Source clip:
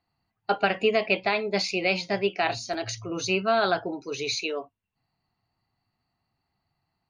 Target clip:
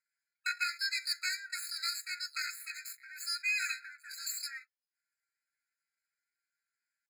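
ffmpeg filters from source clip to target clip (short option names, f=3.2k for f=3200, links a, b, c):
-af "highpass=350,asetrate=80880,aresample=44100,atempo=0.545254,aeval=exprs='max(val(0),0)':c=same,aecho=1:1:6.4:0.84,afftfilt=real='re*eq(mod(floor(b*sr/1024/1300),2),1)':imag='im*eq(mod(floor(b*sr/1024/1300),2),1)':win_size=1024:overlap=0.75,volume=-3.5dB"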